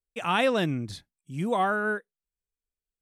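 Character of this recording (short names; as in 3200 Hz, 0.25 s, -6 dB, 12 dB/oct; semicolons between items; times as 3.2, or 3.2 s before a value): noise floor -94 dBFS; spectral tilt -3.5 dB/oct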